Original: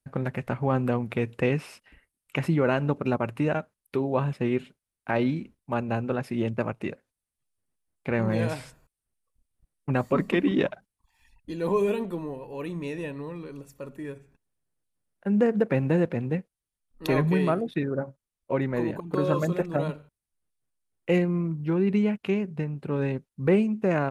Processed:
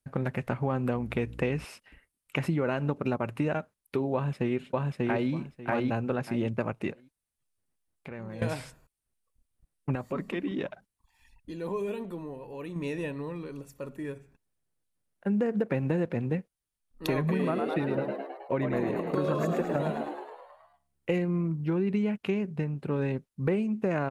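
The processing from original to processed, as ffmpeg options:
-filter_complex "[0:a]asettb=1/sr,asplit=3[a][b][c];[a]atrim=end=0.944[d];[b]atrim=start=0.94:end=1.65,asetpts=PTS-STARTPTS,afade=t=in:d=0.004:c=qsin,afade=t=out:st=0.706:d=0.004:c=qsin,aeval=exprs='val(0)+0.00708*(sin(2*PI*60*n/s)+sin(2*PI*2*60*n/s)/2+sin(2*PI*3*60*n/s)/3+sin(2*PI*4*60*n/s)/4+sin(2*PI*5*60*n/s)/5)':c=same[e];[c]atrim=start=1.646[f];[d][e]acrossfade=d=0.004:c1=hsin:c2=qsin[g];[g][f]acrossfade=d=0.004:c1=qsin:c2=hsin,asplit=2[h][i];[i]afade=t=in:st=4.14:d=0.01,afade=t=out:st=5.31:d=0.01,aecho=0:1:590|1180|1770:0.891251|0.133688|0.0200531[j];[h][j]amix=inputs=2:normalize=0,asettb=1/sr,asplit=3[k][l][m];[k]atrim=end=6.914[n];[l]atrim=start=6.91:end=8.42,asetpts=PTS-STARTPTS,afade=t=in:d=0.004:c=qsin,afade=t=out:st=1.506:d=0.004:c=qsin,acompressor=threshold=-42dB:ratio=3:attack=3.2:release=140:knee=1:detection=peak[o];[m]atrim=start=8.416[p];[n][o]acrossfade=d=0.004:c1=hsin:c2=qsin[q];[q][p]acrossfade=d=0.004:c1=qsin:c2=hsin,asettb=1/sr,asplit=3[r][s][t];[r]atrim=end=9.954[u];[s]atrim=start=9.95:end=12.76,asetpts=PTS-STARTPTS,afade=t=in:d=0.004:c=qsin,afade=t=out:st=2.806:d=0.004:c=qsin,acompressor=threshold=-44dB:ratio=1.5:attack=3.2:release=140:knee=1:detection=peak[v];[t]atrim=start=12.756[w];[u][v]acrossfade=d=0.004:c1=hsin:c2=qsin[x];[x][w]acrossfade=d=0.004:c1=qsin:c2=hsin,asettb=1/sr,asplit=3[y][z][aa];[y]atrim=end=17.184[ab];[z]atrim=start=17.18:end=21.13,asetpts=PTS-STARTPTS,afade=t=in:d=0.004:c=qsin,afade=t=out:st=3.946:d=0.004:c=qsin,asplit=9[ac][ad][ae][af][ag][ah][ai][aj][ak];[ad]adelay=106,afreqshift=69,volume=-6.5dB[al];[ae]adelay=212,afreqshift=138,volume=-10.8dB[am];[af]adelay=318,afreqshift=207,volume=-15.1dB[an];[ag]adelay=424,afreqshift=276,volume=-19.4dB[ao];[ah]adelay=530,afreqshift=345,volume=-23.7dB[ap];[ai]adelay=636,afreqshift=414,volume=-28dB[aq];[aj]adelay=742,afreqshift=483,volume=-32.3dB[ar];[ak]adelay=848,afreqshift=552,volume=-36.6dB[as];[ac][al][am][an][ao][ap][aq][ar][as]amix=inputs=9:normalize=0,atrim=end_sample=174195[at];[aa]atrim=start=21.126[au];[ab][at]acrossfade=d=0.004:c1=hsin:c2=qsin[av];[av][au]acrossfade=d=0.004:c1=qsin:c2=hsin,acompressor=threshold=-24dB:ratio=6"

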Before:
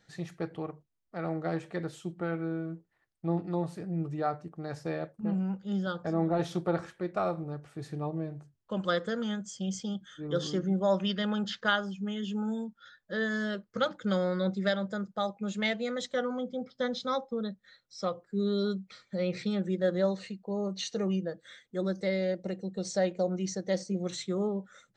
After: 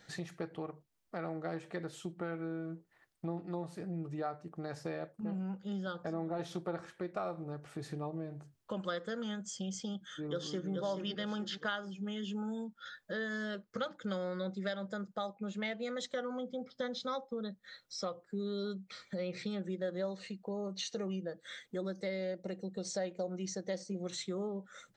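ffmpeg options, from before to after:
-filter_complex "[0:a]asplit=2[a][b];[b]afade=t=in:st=10.1:d=0.01,afade=t=out:st=10.71:d=0.01,aecho=0:1:430|860|1290|1720:0.668344|0.200503|0.060151|0.0180453[c];[a][c]amix=inputs=2:normalize=0,asettb=1/sr,asplit=3[d][e][f];[d]atrim=end=15.334[g];[e]atrim=start=15.33:end=15.83,asetpts=PTS-STARTPTS,afade=t=in:d=0.004:c=qsin,afade=t=out:st=0.496:d=0.004:c=qsin,highshelf=f=4.5k:g=-11[h];[f]atrim=start=15.826[i];[g][h]acrossfade=d=0.004:c1=hsin:c2=qsin[j];[j][i]acrossfade=d=0.004:c1=qsin:c2=hsin,lowshelf=f=160:g=-6.5,acompressor=threshold=-49dB:ratio=2.5,volume=7dB"

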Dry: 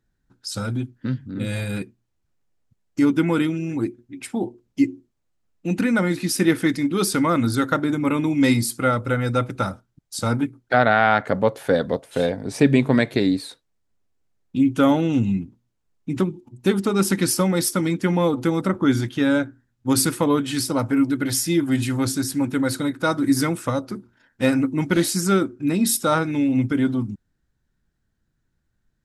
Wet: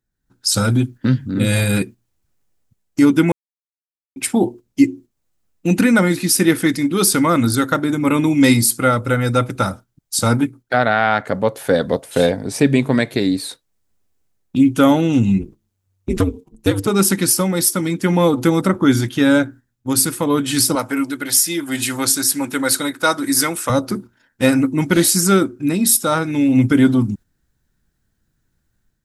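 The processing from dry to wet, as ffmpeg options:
-filter_complex "[0:a]asplit=3[a][b][c];[a]afade=t=out:st=15.38:d=0.02[d];[b]aeval=exprs='val(0)*sin(2*PI*95*n/s)':c=same,afade=t=in:st=15.38:d=0.02,afade=t=out:st=16.86:d=0.02[e];[c]afade=t=in:st=16.86:d=0.02[f];[d][e][f]amix=inputs=3:normalize=0,asettb=1/sr,asplit=3[g][h][i];[g]atrim=end=20.754[j];[h]atrim=start=20.75:end=23.7,asetpts=PTS-STARTPTS,afade=t=in:d=0.004:c=qsin,afade=t=out:st=2.946:d=0.004:c=qsin,highpass=f=660:p=1[k];[i]atrim=start=23.696[l];[j][k]acrossfade=d=0.004:c1=hsin:c2=qsin[m];[m][l]acrossfade=d=0.004:c1=qsin:c2=hsin,asplit=3[n][o][p];[n]atrim=end=3.32,asetpts=PTS-STARTPTS,afade=t=out:st=3.316:d=0.004:c=hsin[q];[o]atrim=start=3.32:end=4.16,asetpts=PTS-STARTPTS,volume=0[r];[p]atrim=start=4.16,asetpts=PTS-STARTPTS,afade=t=in:d=0.004:c=hsin[s];[q][r][s]concat=n=3:v=0:a=1,agate=range=-6dB:threshold=-41dB:ratio=16:detection=peak,highshelf=f=7.1k:g=10,dynaudnorm=f=120:g=5:m=11.5dB,volume=-1dB"

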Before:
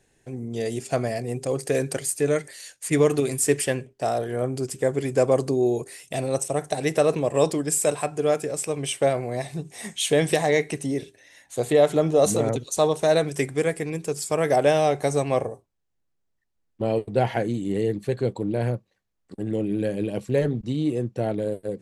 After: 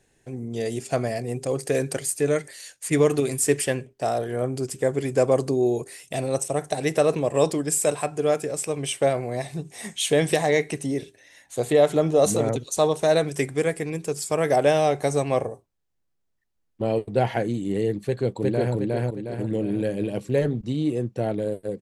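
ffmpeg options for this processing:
-filter_complex "[0:a]asplit=2[a][b];[b]afade=t=in:st=18.06:d=0.01,afade=t=out:st=18.74:d=0.01,aecho=0:1:360|720|1080|1440|1800|2160:0.944061|0.424827|0.191172|0.0860275|0.0387124|0.0174206[c];[a][c]amix=inputs=2:normalize=0"

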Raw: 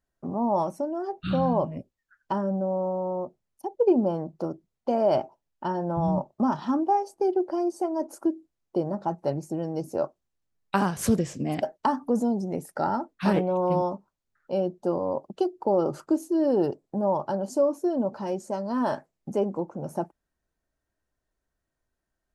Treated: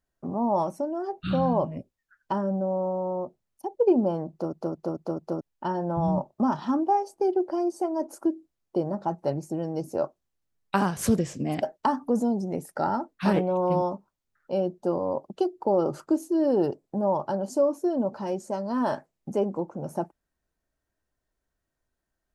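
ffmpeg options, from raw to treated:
-filter_complex "[0:a]asplit=6[a][b][c][d][e][f];[a]atrim=end=4.532[g];[b]atrim=start=4.308:end=4.532[h];[c]atrim=start=4.308:end=4.532[i];[d]atrim=start=4.308:end=4.532[j];[e]atrim=start=4.308:end=4.532[k];[f]atrim=start=5.408[l];[g][h]acrossfade=d=0.004:c1=hsin:c2=hsin[m];[m][i]acrossfade=d=0.004:c1=hsin:c2=hsin[n];[n][j]acrossfade=d=0.004:c1=hsin:c2=hsin[o];[o][k]acrossfade=d=0.004:c1=hsin:c2=hsin[p];[p][l]acrossfade=d=0.004:c1=hsin:c2=hsin"

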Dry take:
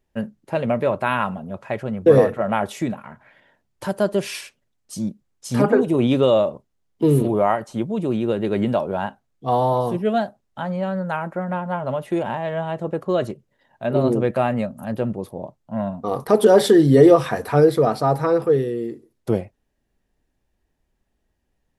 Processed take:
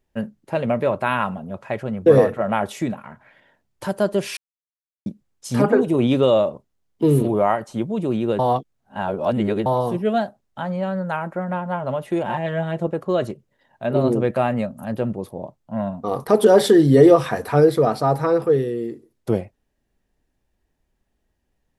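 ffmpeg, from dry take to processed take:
-filter_complex "[0:a]asettb=1/sr,asplit=3[a][b][c];[a]atrim=end=12.284[d];[b]atrim=start=12.28:end=12.87,asetpts=PTS-STARTPTS,afade=t=in:d=0.004:c=qsin,afade=t=out:st=0.586:d=0.004:c=qsin,aecho=1:1:5.7:0.75,atrim=end_sample=26019[e];[c]atrim=start=12.866[f];[d][e]acrossfade=d=0.004:c1=hsin:c2=qsin[g];[g][f]acrossfade=d=0.004:c1=qsin:c2=hsin,asplit=5[h][i][j][k][l];[h]atrim=end=4.37,asetpts=PTS-STARTPTS,afade=t=out:st=4.366:d=0.004:c=hsin[m];[i]atrim=start=4.37:end=5.06,asetpts=PTS-STARTPTS,volume=0[n];[j]atrim=start=5.06:end=8.392,asetpts=PTS-STARTPTS,afade=t=in:d=0.004:c=hsin[o];[k]atrim=start=8.388:end=9.662,asetpts=PTS-STARTPTS,areverse[p];[l]atrim=start=9.658[q];[m][n][o]concat=n=3:v=0:a=1[r];[r][p]acrossfade=d=0.004:c1=hsin:c2=hsin[s];[s][q]acrossfade=d=0.004:c1=hsin:c2=hsin"

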